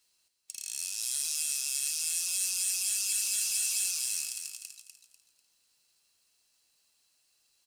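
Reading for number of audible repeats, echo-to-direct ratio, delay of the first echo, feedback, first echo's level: 3, -6.5 dB, 0.247 s, 32%, -7.0 dB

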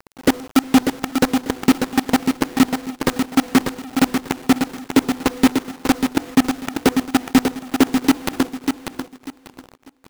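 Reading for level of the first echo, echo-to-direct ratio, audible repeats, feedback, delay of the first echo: -6.0 dB, -5.5 dB, 3, 24%, 0.593 s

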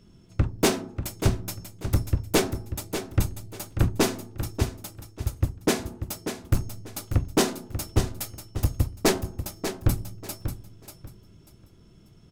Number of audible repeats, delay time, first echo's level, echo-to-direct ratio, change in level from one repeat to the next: 3, 0.59 s, -9.0 dB, -9.0 dB, -13.0 dB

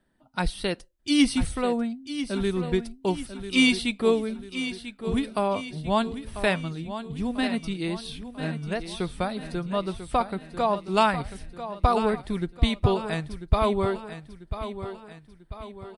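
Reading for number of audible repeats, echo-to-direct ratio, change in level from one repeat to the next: 4, -10.0 dB, -6.5 dB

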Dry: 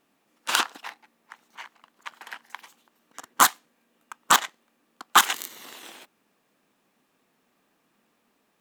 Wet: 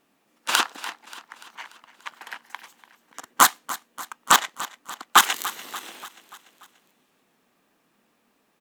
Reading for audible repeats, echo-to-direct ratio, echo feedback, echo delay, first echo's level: 4, -14.5 dB, 55%, 0.291 s, -16.0 dB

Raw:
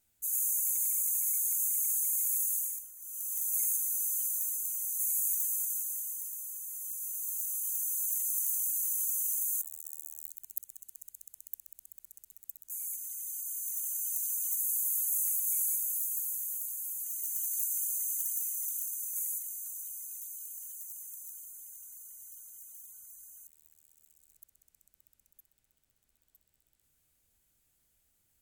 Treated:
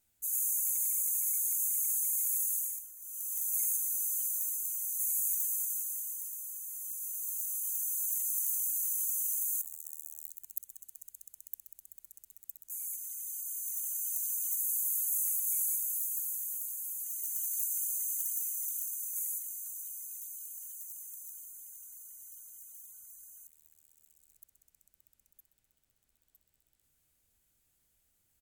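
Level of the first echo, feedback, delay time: -22.5 dB, 57%, 0.131 s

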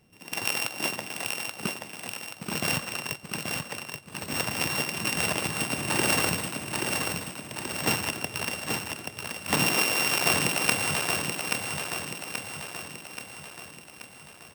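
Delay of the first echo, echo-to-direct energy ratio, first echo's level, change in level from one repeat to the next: 0.83 s, -3.0 dB, -4.5 dB, -5.5 dB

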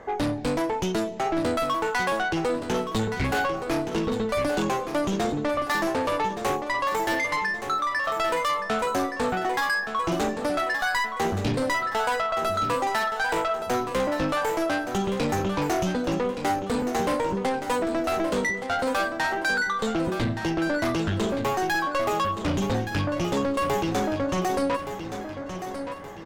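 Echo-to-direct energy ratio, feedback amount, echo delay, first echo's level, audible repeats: -8.0 dB, 43%, 1.172 s, -9.0 dB, 4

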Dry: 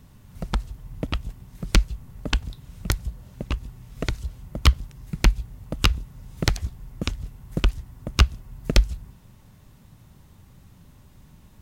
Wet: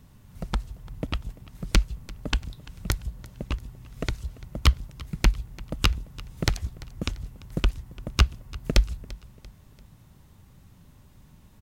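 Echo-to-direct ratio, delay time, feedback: -19.5 dB, 0.342 s, 43%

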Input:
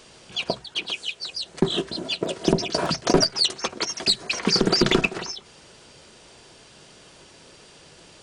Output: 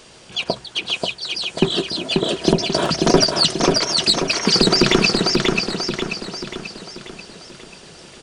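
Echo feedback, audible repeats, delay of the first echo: 50%, 6, 0.537 s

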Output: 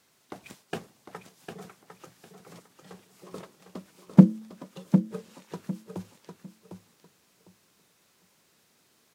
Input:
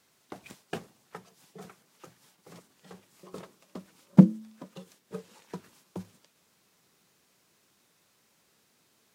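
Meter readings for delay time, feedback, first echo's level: 0.753 s, 23%, -7.5 dB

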